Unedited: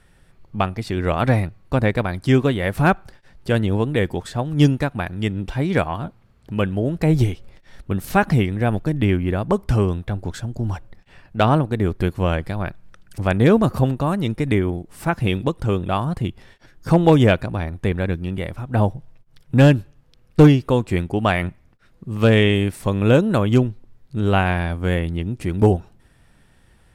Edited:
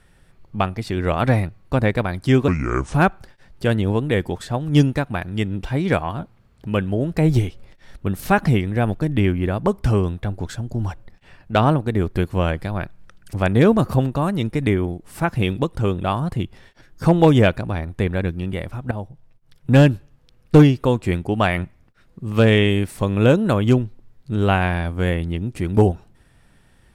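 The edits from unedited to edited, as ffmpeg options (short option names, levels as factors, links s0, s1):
-filter_complex "[0:a]asplit=4[s0][s1][s2][s3];[s0]atrim=end=2.484[s4];[s1]atrim=start=2.48:end=2.79,asetpts=PTS-STARTPTS,asetrate=29547,aresample=44100,atrim=end_sample=20404,asetpts=PTS-STARTPTS[s5];[s2]atrim=start=2.786:end=18.76,asetpts=PTS-STARTPTS,afade=t=out:st=15.97:d=0.004:c=hsin:silence=0.188365[s6];[s3]atrim=start=18.76,asetpts=PTS-STARTPTS,afade=t=in:d=0.84:silence=0.188365[s7];[s4][s5]acrossfade=d=0.004:c1=hsin:c2=hsin[s8];[s6][s7]concat=n=2:v=0:a=1[s9];[s8][s9]acrossfade=d=0.004:c1=hsin:c2=hsin"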